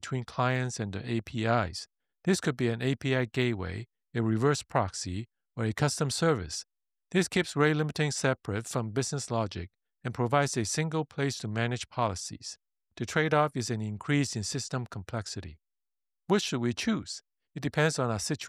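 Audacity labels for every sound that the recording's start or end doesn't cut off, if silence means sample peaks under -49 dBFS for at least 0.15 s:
2.250000	3.840000	sound
4.140000	5.240000	sound
5.570000	6.630000	sound
7.110000	9.670000	sound
10.050000	12.550000	sound
12.970000	15.550000	sound
16.290000	17.190000	sound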